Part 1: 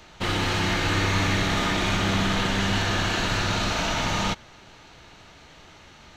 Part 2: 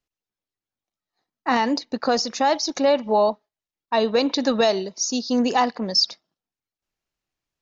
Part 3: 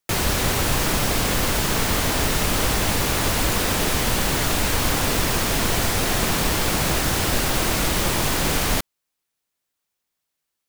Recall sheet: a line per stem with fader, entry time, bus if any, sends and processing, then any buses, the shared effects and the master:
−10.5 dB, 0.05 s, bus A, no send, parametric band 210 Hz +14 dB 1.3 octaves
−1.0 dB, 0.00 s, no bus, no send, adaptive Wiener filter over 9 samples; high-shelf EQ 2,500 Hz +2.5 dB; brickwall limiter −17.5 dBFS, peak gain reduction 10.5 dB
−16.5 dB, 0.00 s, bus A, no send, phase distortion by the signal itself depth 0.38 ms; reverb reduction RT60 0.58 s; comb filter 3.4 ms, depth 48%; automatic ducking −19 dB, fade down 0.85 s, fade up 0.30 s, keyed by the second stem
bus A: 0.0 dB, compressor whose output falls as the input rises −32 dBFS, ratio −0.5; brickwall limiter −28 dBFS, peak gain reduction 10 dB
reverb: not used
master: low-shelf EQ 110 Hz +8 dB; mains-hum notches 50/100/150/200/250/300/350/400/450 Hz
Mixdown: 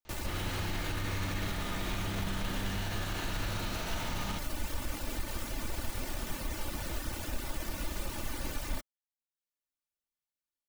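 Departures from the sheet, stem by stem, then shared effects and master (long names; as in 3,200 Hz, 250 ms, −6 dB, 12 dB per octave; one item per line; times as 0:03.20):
stem 1: missing parametric band 210 Hz +14 dB 1.3 octaves
stem 2: muted
master: missing mains-hum notches 50/100/150/200/250/300/350/400/450 Hz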